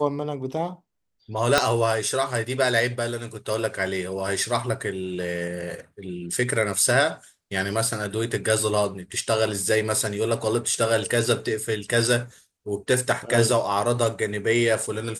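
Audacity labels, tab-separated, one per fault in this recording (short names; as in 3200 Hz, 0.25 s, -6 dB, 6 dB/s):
1.580000	1.580000	pop -3 dBFS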